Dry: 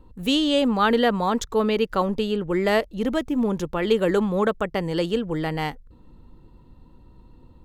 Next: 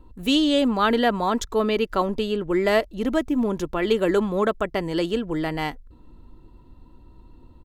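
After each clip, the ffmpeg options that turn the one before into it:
ffmpeg -i in.wav -af "aecho=1:1:3:0.32" out.wav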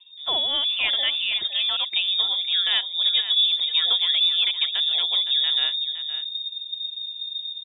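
ffmpeg -i in.wav -af "asubboost=boost=8:cutoff=180,aecho=1:1:514:0.282,lowpass=frequency=3100:width_type=q:width=0.5098,lowpass=frequency=3100:width_type=q:width=0.6013,lowpass=frequency=3100:width_type=q:width=0.9,lowpass=frequency=3100:width_type=q:width=2.563,afreqshift=-3700,volume=-3.5dB" out.wav

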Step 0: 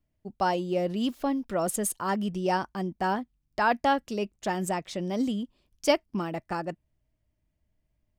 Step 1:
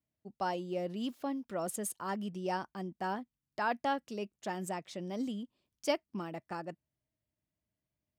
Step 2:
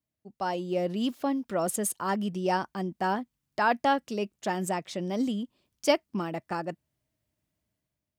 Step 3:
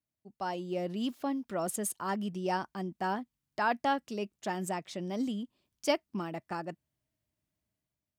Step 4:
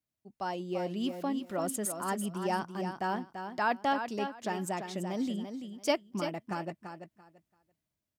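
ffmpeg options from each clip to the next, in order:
ffmpeg -i in.wav -af "highpass=110,volume=-8.5dB" out.wav
ffmpeg -i in.wav -af "dynaudnorm=framelen=120:gausssize=9:maxgain=8dB" out.wav
ffmpeg -i in.wav -af "equalizer=frequency=510:width=5.2:gain=-3,volume=-4.5dB" out.wav
ffmpeg -i in.wav -af "aecho=1:1:338|676|1014:0.398|0.0796|0.0159" out.wav

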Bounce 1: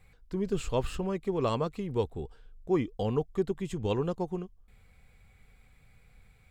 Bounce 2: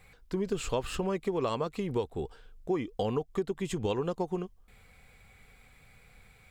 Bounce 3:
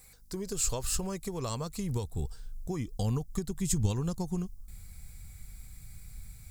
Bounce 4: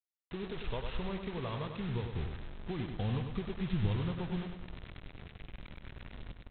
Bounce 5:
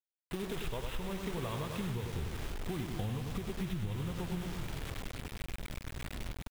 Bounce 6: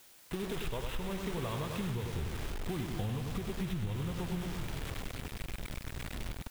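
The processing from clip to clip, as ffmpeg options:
ffmpeg -i in.wav -af "lowshelf=frequency=210:gain=-8.5,acompressor=threshold=-34dB:ratio=6,volume=7dB" out.wav
ffmpeg -i in.wav -af "asubboost=boost=11:cutoff=140,aeval=exprs='val(0)+0.000794*(sin(2*PI*50*n/s)+sin(2*PI*2*50*n/s)/2+sin(2*PI*3*50*n/s)/3+sin(2*PI*4*50*n/s)/4+sin(2*PI*5*50*n/s)/5)':channel_layout=same,aexciter=amount=8:drive=4.2:freq=4400,volume=-5dB" out.wav
ffmpeg -i in.wav -af "aresample=8000,acrusher=bits=6:mix=0:aa=0.000001,aresample=44100,aecho=1:1:99|198|297|396|495|594:0.473|0.227|0.109|0.0523|0.0251|0.0121,volume=-4dB" out.wav
ffmpeg -i in.wav -filter_complex "[0:a]asplit=7[link_01][link_02][link_03][link_04][link_05][link_06][link_07];[link_02]adelay=267,afreqshift=-34,volume=-13dB[link_08];[link_03]adelay=534,afreqshift=-68,volume=-17.6dB[link_09];[link_04]adelay=801,afreqshift=-102,volume=-22.2dB[link_10];[link_05]adelay=1068,afreqshift=-136,volume=-26.7dB[link_11];[link_06]adelay=1335,afreqshift=-170,volume=-31.3dB[link_12];[link_07]adelay=1602,afreqshift=-204,volume=-35.9dB[link_13];[link_01][link_08][link_09][link_10][link_11][link_12][link_13]amix=inputs=7:normalize=0,acrusher=bits=7:mix=0:aa=0.000001,acompressor=threshold=-39dB:ratio=6,volume=5.5dB" out.wav
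ffmpeg -i in.wav -af "aeval=exprs='val(0)+0.5*0.00473*sgn(val(0))':channel_layout=same" out.wav

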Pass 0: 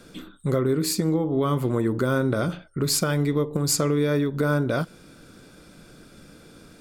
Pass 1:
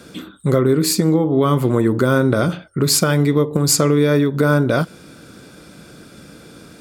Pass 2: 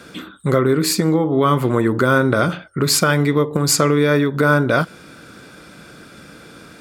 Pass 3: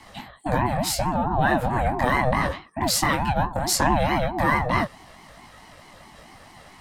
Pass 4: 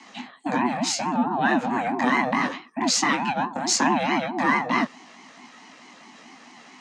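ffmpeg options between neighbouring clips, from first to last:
ffmpeg -i in.wav -af "highpass=65,volume=7.5dB" out.wav
ffmpeg -i in.wav -af "equalizer=frequency=1600:width=0.57:gain=7,volume=-2dB" out.wav
ffmpeg -i in.wav -af "afreqshift=51,flanger=delay=19.5:depth=4:speed=0.73,aeval=exprs='val(0)*sin(2*PI*430*n/s+430*0.3/4.6*sin(2*PI*4.6*n/s))':channel_layout=same" out.wav
ffmpeg -i in.wav -af "highpass=frequency=210:width=0.5412,highpass=frequency=210:width=1.3066,equalizer=frequency=250:width_type=q:width=4:gain=9,equalizer=frequency=570:width_type=q:width=4:gain=-9,equalizer=frequency=2500:width_type=q:width=4:gain=5,equalizer=frequency=6500:width_type=q:width=4:gain=8,lowpass=frequency=7000:width=0.5412,lowpass=frequency=7000:width=1.3066" out.wav

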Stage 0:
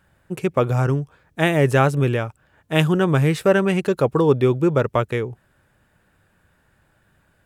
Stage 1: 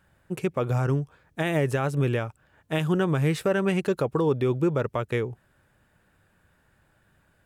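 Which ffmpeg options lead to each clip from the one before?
ffmpeg -i in.wav -af "alimiter=limit=-12dB:level=0:latency=1:release=148,volume=-3dB" out.wav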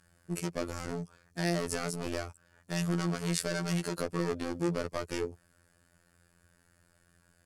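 ffmpeg -i in.wav -af "volume=25.5dB,asoftclip=hard,volume=-25.5dB,superequalizer=9b=0.631:14b=3.16:15b=3.16:16b=3.16,afftfilt=real='hypot(re,im)*cos(PI*b)':imag='0':win_size=2048:overlap=0.75" out.wav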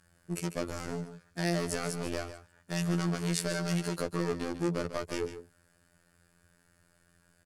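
ffmpeg -i in.wav -af "aecho=1:1:146:0.266" out.wav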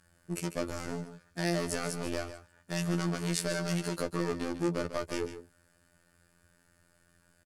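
ffmpeg -i in.wav -filter_complex "[0:a]asplit=2[link_01][link_02];[link_02]adelay=15,volume=-14dB[link_03];[link_01][link_03]amix=inputs=2:normalize=0" out.wav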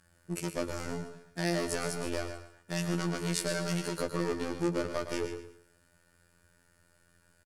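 ffmpeg -i in.wav -af "aecho=1:1:114|228|342:0.316|0.098|0.0304" out.wav

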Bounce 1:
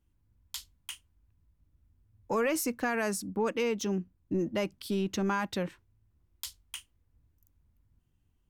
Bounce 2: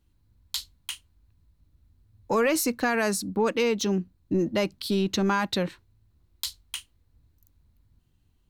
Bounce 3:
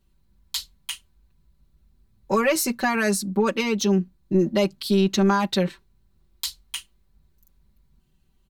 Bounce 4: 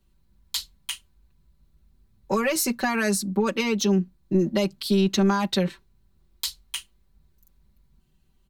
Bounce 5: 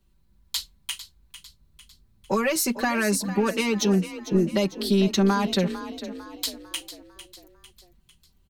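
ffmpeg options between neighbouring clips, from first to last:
ffmpeg -i in.wav -af "equalizer=frequency=4100:width_type=o:width=0.3:gain=10,volume=5.5dB" out.wav
ffmpeg -i in.wav -af "aecho=1:1:5.2:0.97" out.wav
ffmpeg -i in.wav -filter_complex "[0:a]acrossover=split=220|3000[link_01][link_02][link_03];[link_02]acompressor=threshold=-21dB:ratio=6[link_04];[link_01][link_04][link_03]amix=inputs=3:normalize=0" out.wav
ffmpeg -i in.wav -filter_complex "[0:a]asplit=6[link_01][link_02][link_03][link_04][link_05][link_06];[link_02]adelay=450,afreqshift=34,volume=-13dB[link_07];[link_03]adelay=900,afreqshift=68,volume=-19.4dB[link_08];[link_04]adelay=1350,afreqshift=102,volume=-25.8dB[link_09];[link_05]adelay=1800,afreqshift=136,volume=-32.1dB[link_10];[link_06]adelay=2250,afreqshift=170,volume=-38.5dB[link_11];[link_01][link_07][link_08][link_09][link_10][link_11]amix=inputs=6:normalize=0" out.wav

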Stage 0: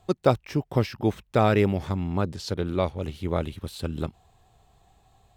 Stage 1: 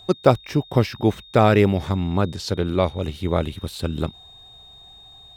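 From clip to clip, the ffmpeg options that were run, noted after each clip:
ffmpeg -i in.wav -af "aeval=exprs='val(0)+0.00355*sin(2*PI*3700*n/s)':channel_layout=same,volume=5dB" out.wav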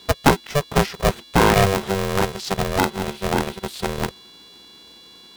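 ffmpeg -i in.wav -af "aeval=exprs='val(0)*sgn(sin(2*PI*290*n/s))':channel_layout=same" out.wav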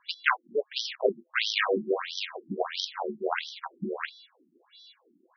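ffmpeg -i in.wav -af "acrusher=bits=7:dc=4:mix=0:aa=0.000001,afftfilt=real='re*between(b*sr/1024,240*pow(4400/240,0.5+0.5*sin(2*PI*1.5*pts/sr))/1.41,240*pow(4400/240,0.5+0.5*sin(2*PI*1.5*pts/sr))*1.41)':imag='im*between(b*sr/1024,240*pow(4400/240,0.5+0.5*sin(2*PI*1.5*pts/sr))/1.41,240*pow(4400/240,0.5+0.5*sin(2*PI*1.5*pts/sr))*1.41)':win_size=1024:overlap=0.75" out.wav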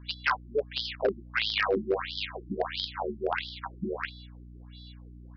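ffmpeg -i in.wav -af "aeval=exprs='val(0)+0.00501*(sin(2*PI*60*n/s)+sin(2*PI*2*60*n/s)/2+sin(2*PI*3*60*n/s)/3+sin(2*PI*4*60*n/s)/4+sin(2*PI*5*60*n/s)/5)':channel_layout=same,aresample=11025,asoftclip=type=hard:threshold=-18dB,aresample=44100" out.wav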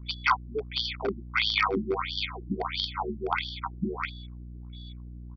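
ffmpeg -i in.wav -af "aecho=1:1:0.9:0.98,anlmdn=0.00631" out.wav

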